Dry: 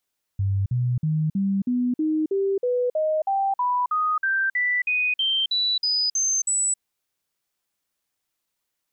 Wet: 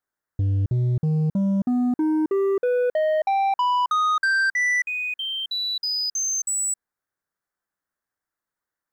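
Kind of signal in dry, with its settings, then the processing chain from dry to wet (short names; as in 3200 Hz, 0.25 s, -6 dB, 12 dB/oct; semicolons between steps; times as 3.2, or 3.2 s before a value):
stepped sine 98 Hz up, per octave 3, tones 20, 0.27 s, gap 0.05 s -19.5 dBFS
resonant high shelf 2100 Hz -8 dB, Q 3; compressor 5:1, threshold -23 dBFS; sample leveller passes 2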